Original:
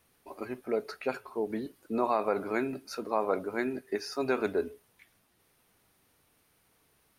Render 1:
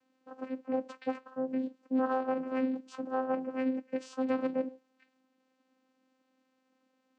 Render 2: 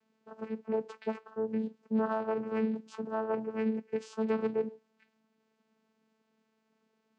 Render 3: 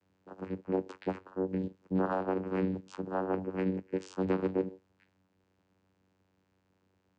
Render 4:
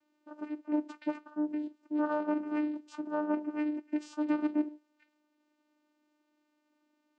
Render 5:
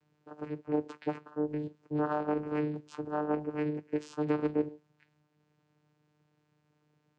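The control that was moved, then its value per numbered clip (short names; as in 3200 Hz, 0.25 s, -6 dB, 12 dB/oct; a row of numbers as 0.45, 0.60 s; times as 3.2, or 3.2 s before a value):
vocoder, frequency: 260, 220, 94, 300, 150 Hz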